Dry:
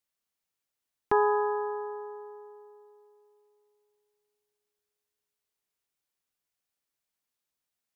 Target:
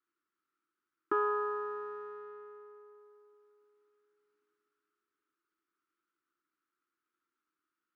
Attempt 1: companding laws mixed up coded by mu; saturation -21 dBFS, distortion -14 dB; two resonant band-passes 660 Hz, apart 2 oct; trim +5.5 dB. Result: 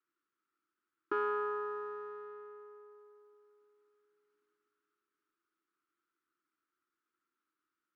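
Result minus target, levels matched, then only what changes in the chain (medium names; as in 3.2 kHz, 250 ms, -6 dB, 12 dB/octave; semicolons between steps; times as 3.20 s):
saturation: distortion +12 dB
change: saturation -12.5 dBFS, distortion -26 dB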